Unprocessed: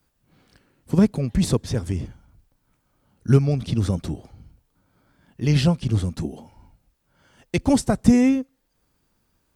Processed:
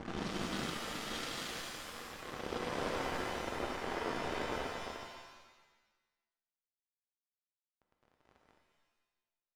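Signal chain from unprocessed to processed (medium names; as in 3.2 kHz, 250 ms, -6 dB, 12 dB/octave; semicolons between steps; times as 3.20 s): Doppler pass-by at 2.62 s, 25 m/s, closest 9.7 m; spectral gate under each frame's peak -15 dB weak; Paulstretch 34×, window 0.05 s, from 3.70 s; delay 900 ms -11 dB; small samples zeroed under -40 dBFS; treble shelf 3.6 kHz +7.5 dB; level-controlled noise filter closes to 960 Hz, open at -29.5 dBFS; pitch-shifted reverb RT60 1.1 s, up +7 st, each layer -2 dB, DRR 4 dB; trim +7 dB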